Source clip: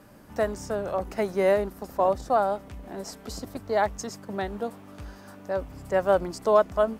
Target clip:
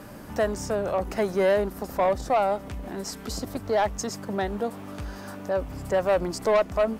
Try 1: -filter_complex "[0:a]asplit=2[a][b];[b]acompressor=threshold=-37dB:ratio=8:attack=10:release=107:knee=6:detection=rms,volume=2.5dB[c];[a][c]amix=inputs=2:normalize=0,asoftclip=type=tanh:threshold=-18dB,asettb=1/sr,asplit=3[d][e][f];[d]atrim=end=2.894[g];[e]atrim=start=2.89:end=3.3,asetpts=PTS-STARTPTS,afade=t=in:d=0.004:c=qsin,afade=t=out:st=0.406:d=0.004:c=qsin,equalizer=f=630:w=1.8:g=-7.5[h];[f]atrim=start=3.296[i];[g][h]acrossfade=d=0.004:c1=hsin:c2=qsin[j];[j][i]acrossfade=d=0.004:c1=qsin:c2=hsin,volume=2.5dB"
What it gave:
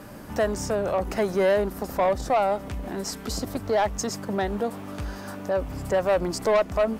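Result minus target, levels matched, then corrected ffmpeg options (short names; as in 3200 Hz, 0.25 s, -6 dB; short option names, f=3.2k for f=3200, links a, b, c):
compressor: peak gain reduction -8.5 dB
-filter_complex "[0:a]asplit=2[a][b];[b]acompressor=threshold=-46.5dB:ratio=8:attack=10:release=107:knee=6:detection=rms,volume=2.5dB[c];[a][c]amix=inputs=2:normalize=0,asoftclip=type=tanh:threshold=-18dB,asettb=1/sr,asplit=3[d][e][f];[d]atrim=end=2.894[g];[e]atrim=start=2.89:end=3.3,asetpts=PTS-STARTPTS,afade=t=in:d=0.004:c=qsin,afade=t=out:st=0.406:d=0.004:c=qsin,equalizer=f=630:w=1.8:g=-7.5[h];[f]atrim=start=3.296[i];[g][h]acrossfade=d=0.004:c1=hsin:c2=qsin[j];[j][i]acrossfade=d=0.004:c1=qsin:c2=hsin,volume=2.5dB"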